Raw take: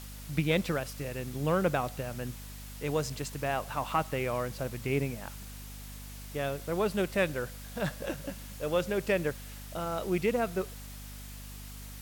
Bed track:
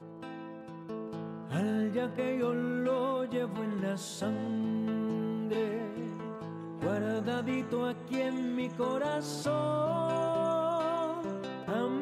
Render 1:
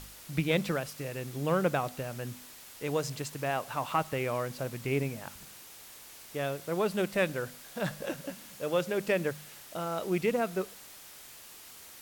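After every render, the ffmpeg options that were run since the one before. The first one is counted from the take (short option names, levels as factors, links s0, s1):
-af "bandreject=f=50:t=h:w=4,bandreject=f=100:t=h:w=4,bandreject=f=150:t=h:w=4,bandreject=f=200:t=h:w=4,bandreject=f=250:t=h:w=4"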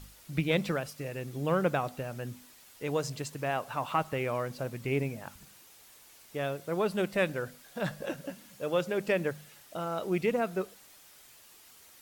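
-af "afftdn=nr=7:nf=-50"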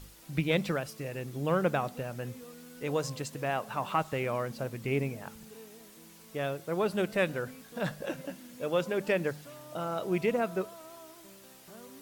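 -filter_complex "[1:a]volume=0.119[s0];[0:a][s0]amix=inputs=2:normalize=0"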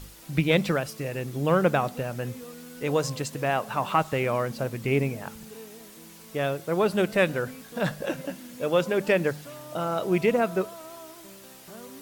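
-af "volume=2"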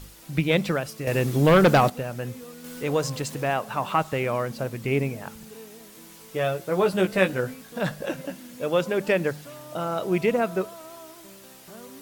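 -filter_complex "[0:a]asettb=1/sr,asplit=3[s0][s1][s2];[s0]atrim=end=1.074[s3];[s1]atrim=start=1.07:end=1.9,asetpts=PTS-STARTPTS,afade=t=in:d=0.004:c=qsin,afade=t=out:st=0.826:d=0.004:c=qsin,aeval=exprs='0.282*sin(PI/2*1.78*val(0)/0.282)':c=same[s4];[s2]atrim=start=1.896[s5];[s3][s4]acrossfade=d=0.004:c1=hsin:c2=qsin[s6];[s6][s5]acrossfade=d=0.004:c1=qsin:c2=hsin,asettb=1/sr,asplit=3[s7][s8][s9];[s7]atrim=end=2.644[s10];[s8]atrim=start=2.64:end=3.54,asetpts=PTS-STARTPTS,afade=t=in:d=0.004:c=qsin,afade=t=out:st=0.896:d=0.004:c=qsin,aeval=exprs='val(0)+0.5*0.0106*sgn(val(0))':c=same[s11];[s9]atrim=start=3.536[s12];[s10][s11]acrossfade=d=0.004:c1=hsin:c2=qsin[s13];[s13][s12]acrossfade=d=0.004:c1=qsin:c2=hsin,asettb=1/sr,asplit=3[s14][s15][s16];[s14]atrim=end=5.934[s17];[s15]atrim=start=5.93:end=7.54,asetpts=PTS-STARTPTS,afade=t=in:d=0.004:c=qsin,afade=t=out:st=1.606:d=0.004:c=qsin,asplit=2[s18][s19];[s19]adelay=16,volume=0.562[s20];[s18][s20]amix=inputs=2:normalize=0,atrim=end_sample=71001[s21];[s16]atrim=start=7.536[s22];[s17][s21]acrossfade=d=0.004:c1=hsin:c2=qsin[s23];[s23][s22]acrossfade=d=0.004:c1=qsin:c2=hsin"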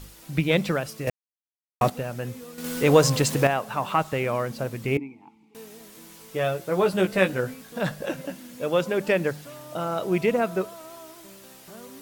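-filter_complex "[0:a]asettb=1/sr,asplit=3[s0][s1][s2];[s0]atrim=end=4.974[s3];[s1]atrim=start=4.97:end=5.55,asetpts=PTS-STARTPTS,afade=t=in:d=0.004:c=qsin,afade=t=out:st=0.576:d=0.004:c=qsin,asplit=3[s4][s5][s6];[s4]bandpass=f=300:t=q:w=8,volume=1[s7];[s5]bandpass=f=870:t=q:w=8,volume=0.501[s8];[s6]bandpass=f=2240:t=q:w=8,volume=0.355[s9];[s7][s8][s9]amix=inputs=3:normalize=0[s10];[s2]atrim=start=5.546[s11];[s3][s10]acrossfade=d=0.004:c1=hsin:c2=qsin[s12];[s12][s11]acrossfade=d=0.004:c1=qsin:c2=hsin,asplit=5[s13][s14][s15][s16][s17];[s13]atrim=end=1.1,asetpts=PTS-STARTPTS,afade=t=out:st=1.096:d=0.004:c=hsin[s18];[s14]atrim=start=1.1:end=1.81,asetpts=PTS-STARTPTS,volume=0[s19];[s15]atrim=start=1.81:end=2.582,asetpts=PTS-STARTPTS,afade=t=in:d=0.004:c=hsin[s20];[s16]atrim=start=2.578:end=3.472,asetpts=PTS-STARTPTS,volume=2.51[s21];[s17]atrim=start=3.468[s22];[s18][s19][s20]concat=n=3:v=0:a=1[s23];[s23][s21]acrossfade=d=0.004:c1=hsin:c2=hsin[s24];[s24][s22]acrossfade=d=0.004:c1=hsin:c2=hsin"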